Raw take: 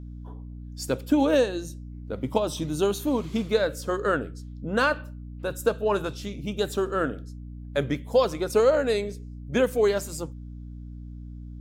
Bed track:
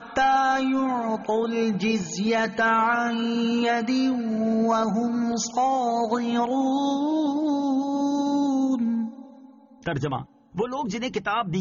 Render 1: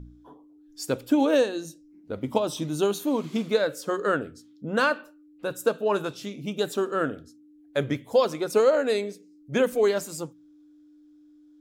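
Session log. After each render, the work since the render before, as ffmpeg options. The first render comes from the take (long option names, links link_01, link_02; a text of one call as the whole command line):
ffmpeg -i in.wav -af "bandreject=frequency=60:width_type=h:width=4,bandreject=frequency=120:width_type=h:width=4,bandreject=frequency=180:width_type=h:width=4,bandreject=frequency=240:width_type=h:width=4" out.wav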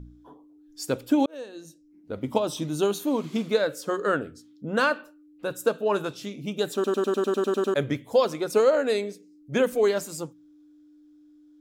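ffmpeg -i in.wav -filter_complex "[0:a]asplit=12[link_01][link_02][link_03][link_04][link_05][link_06][link_07][link_08][link_09][link_10][link_11][link_12];[link_01]atrim=end=1.26,asetpts=PTS-STARTPTS,afade=type=out:start_time=1.256:duration=0.004:curve=hsin[link_13];[link_02]atrim=start=1.26:end=6.842,asetpts=PTS-STARTPTS,afade=type=in:duration=0.94[link_14];[link_03]atrim=start=6.738:end=6.842[link_15];[link_04]atrim=start=6.738:end=6.842[link_16];[link_05]atrim=start=6.738:end=6.842[link_17];[link_06]atrim=start=6.738:end=6.842[link_18];[link_07]atrim=start=6.738:end=6.842[link_19];[link_08]atrim=start=6.738:end=6.842[link_20];[link_09]atrim=start=6.738:end=6.842[link_21];[link_10]atrim=start=6.738:end=6.842[link_22];[link_11]atrim=start=6.738:end=6.842[link_23];[link_12]atrim=start=7.738[link_24];[link_13][link_14]concat=n=2:v=0:a=1[link_25];[link_25][link_15]acrossfade=duration=0.004:curve1=hsin:curve2=hsin[link_26];[link_26][link_16]acrossfade=duration=0.004:curve1=hsin:curve2=hsin[link_27];[link_27][link_17]acrossfade=duration=0.004:curve1=hsin:curve2=hsin[link_28];[link_28][link_18]acrossfade=duration=0.004:curve1=hsin:curve2=hsin[link_29];[link_29][link_19]acrossfade=duration=0.004:curve1=hsin:curve2=hsin[link_30];[link_30][link_20]acrossfade=duration=0.004:curve1=hsin:curve2=hsin[link_31];[link_31][link_21]acrossfade=duration=0.004:curve1=hsin:curve2=hsin[link_32];[link_32][link_22]acrossfade=duration=0.004:curve1=hsin:curve2=hsin[link_33];[link_33][link_23]acrossfade=duration=0.004:curve1=hsin:curve2=hsin[link_34];[link_34][link_24]acrossfade=duration=0.004:curve1=hsin:curve2=hsin" out.wav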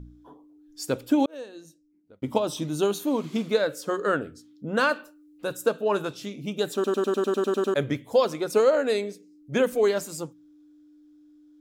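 ffmpeg -i in.wav -filter_complex "[0:a]asettb=1/sr,asplit=3[link_01][link_02][link_03];[link_01]atrim=end=4.894[link_04];[link_02]atrim=start=4.89:end=5.57,asetpts=PTS-STARTPTS,afade=type=in:duration=0.004:curve=qsin,afade=type=out:start_time=0.676:duration=0.004:curve=qsin,bass=frequency=250:gain=0,treble=frequency=4000:gain=6[link_05];[link_03]atrim=start=5.566[link_06];[link_04][link_05]acrossfade=duration=0.004:curve1=hsin:curve2=qsin[link_07];[link_07][link_06]acrossfade=duration=0.004:curve1=qsin:curve2=hsin,asplit=2[link_08][link_09];[link_08]atrim=end=2.22,asetpts=PTS-STARTPTS,afade=type=out:start_time=1.37:duration=0.85[link_10];[link_09]atrim=start=2.22,asetpts=PTS-STARTPTS,afade=type=in:duration=0.004:curve=hsin[link_11];[link_10][link_11]concat=n=2:v=0:a=1" out.wav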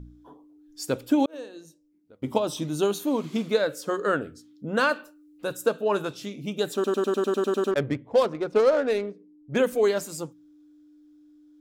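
ffmpeg -i in.wav -filter_complex "[0:a]asplit=3[link_01][link_02][link_03];[link_01]afade=type=out:start_time=1.33:duration=0.02[link_04];[link_02]bandreject=frequency=97.76:width_type=h:width=4,bandreject=frequency=195.52:width_type=h:width=4,bandreject=frequency=293.28:width_type=h:width=4,bandreject=frequency=391.04:width_type=h:width=4,bandreject=frequency=488.8:width_type=h:width=4,bandreject=frequency=586.56:width_type=h:width=4,bandreject=frequency=684.32:width_type=h:width=4,bandreject=frequency=782.08:width_type=h:width=4,bandreject=frequency=879.84:width_type=h:width=4,bandreject=frequency=977.6:width_type=h:width=4,bandreject=frequency=1075.36:width_type=h:width=4,bandreject=frequency=1173.12:width_type=h:width=4,afade=type=in:start_time=1.33:duration=0.02,afade=type=out:start_time=2.35:duration=0.02[link_05];[link_03]afade=type=in:start_time=2.35:duration=0.02[link_06];[link_04][link_05][link_06]amix=inputs=3:normalize=0,asettb=1/sr,asplit=3[link_07][link_08][link_09];[link_07]atrim=end=7.714[link_10];[link_08]atrim=start=7.71:end=9.57,asetpts=PTS-STARTPTS,afade=type=in:duration=0.004:curve=qsin,afade=type=out:start_time=1.856:duration=0.004:curve=qsin,adynamicsmooth=sensitivity=3.5:basefreq=1100[link_11];[link_09]atrim=start=9.566[link_12];[link_10][link_11]acrossfade=duration=0.004:curve1=hsin:curve2=qsin[link_13];[link_13][link_12]acrossfade=duration=0.004:curve1=qsin:curve2=hsin" out.wav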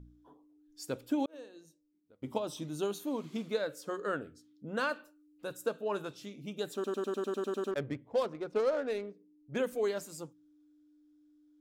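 ffmpeg -i in.wav -af "volume=-10dB" out.wav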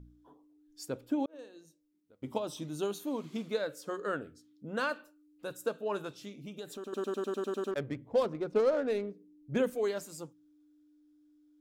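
ffmpeg -i in.wav -filter_complex "[0:a]asettb=1/sr,asplit=3[link_01][link_02][link_03];[link_01]atrim=end=0.884[link_04];[link_02]atrim=start=0.88:end=1.39,asetpts=PTS-STARTPTS,afade=type=in:duration=0.004:curve=qsin,afade=type=out:start_time=0.506:duration=0.004:curve=qsin,highshelf=frequency=2100:gain=-8[link_05];[link_03]atrim=start=1.386[link_06];[link_04][link_05]acrossfade=duration=0.004:curve1=hsin:curve2=qsin[link_07];[link_07][link_06]acrossfade=duration=0.004:curve1=qsin:curve2=hsin,asettb=1/sr,asplit=3[link_08][link_09][link_10];[link_08]atrim=end=6.384[link_11];[link_09]atrim=start=6.38:end=6.93,asetpts=PTS-STARTPTS,afade=type=in:duration=0.004:curve=qsin,afade=type=out:start_time=0.546:duration=0.004:curve=qsin,acompressor=threshold=-40dB:ratio=3:attack=3.2:release=140:knee=1:detection=peak[link_12];[link_10]atrim=start=6.926[link_13];[link_11][link_12]acrossfade=duration=0.004:curve1=hsin:curve2=qsin[link_14];[link_14][link_13]acrossfade=duration=0.004:curve1=qsin:curve2=hsin,asettb=1/sr,asplit=3[link_15][link_16][link_17];[link_15]atrim=end=7.974[link_18];[link_16]atrim=start=7.97:end=9.7,asetpts=PTS-STARTPTS,afade=type=in:duration=0.004:curve=qsin,afade=type=out:start_time=1.726:duration=0.004:curve=qsin,lowshelf=frequency=350:gain=8[link_19];[link_17]atrim=start=9.696[link_20];[link_18][link_19]acrossfade=duration=0.004:curve1=hsin:curve2=qsin[link_21];[link_21][link_20]acrossfade=duration=0.004:curve1=qsin:curve2=hsin" out.wav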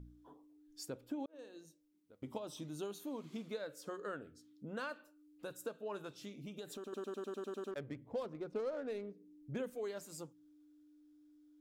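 ffmpeg -i in.wav -af "acompressor=threshold=-47dB:ratio=2" out.wav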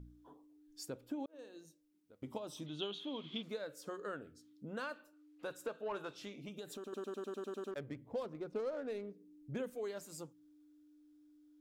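ffmpeg -i in.wav -filter_complex "[0:a]asettb=1/sr,asplit=3[link_01][link_02][link_03];[link_01]atrim=end=2.664[link_04];[link_02]atrim=start=2.66:end=3.43,asetpts=PTS-STARTPTS,afade=type=in:duration=0.004:curve=qsin,afade=type=out:start_time=0.766:duration=0.004:curve=qsin,lowpass=frequency=3300:width_type=q:width=10[link_05];[link_03]atrim=start=3.426[link_06];[link_04][link_05]acrossfade=duration=0.004:curve1=hsin:curve2=qsin[link_07];[link_07][link_06]acrossfade=duration=0.004:curve1=qsin:curve2=hsin,asettb=1/sr,asplit=3[link_08][link_09][link_10];[link_08]atrim=end=5.134[link_11];[link_09]atrim=start=5.13:end=6.49,asetpts=PTS-STARTPTS,afade=type=in:duration=0.004:curve=qsin,afade=type=out:start_time=1.356:duration=0.004:curve=qsin,asplit=2[link_12][link_13];[link_13]highpass=frequency=720:poles=1,volume=13dB,asoftclip=type=tanh:threshold=-30dB[link_14];[link_12][link_14]amix=inputs=2:normalize=0,lowpass=frequency=2500:poles=1,volume=-6dB[link_15];[link_10]atrim=start=6.486[link_16];[link_11][link_15]acrossfade=duration=0.004:curve1=hsin:curve2=qsin[link_17];[link_17][link_16]acrossfade=duration=0.004:curve1=qsin:curve2=hsin" out.wav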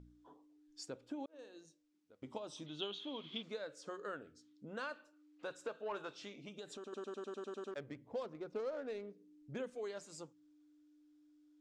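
ffmpeg -i in.wav -af "lowpass=frequency=7800:width=0.5412,lowpass=frequency=7800:width=1.3066,lowshelf=frequency=260:gain=-7" out.wav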